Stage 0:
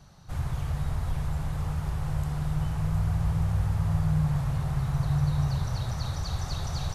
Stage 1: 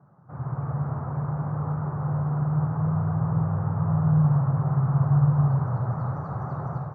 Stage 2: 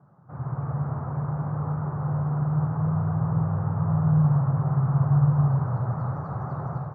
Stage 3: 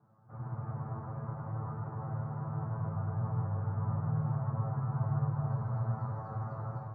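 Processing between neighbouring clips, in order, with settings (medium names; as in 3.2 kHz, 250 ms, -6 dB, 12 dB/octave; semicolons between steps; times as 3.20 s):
elliptic band-pass 120–1300 Hz, stop band 40 dB; level rider gain up to 7 dB
distance through air 61 m
feedback comb 110 Hz, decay 0.19 s, harmonics all, mix 100%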